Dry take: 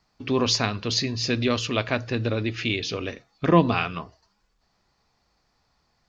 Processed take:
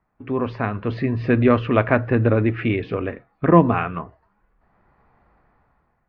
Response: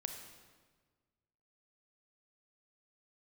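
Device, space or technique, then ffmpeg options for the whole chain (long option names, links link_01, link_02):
action camera in a waterproof case: -af "lowpass=frequency=1900:width=0.5412,lowpass=frequency=1900:width=1.3066,dynaudnorm=framelen=250:gausssize=7:maxgain=14dB,volume=-1dB" -ar 16000 -c:a aac -b:a 64k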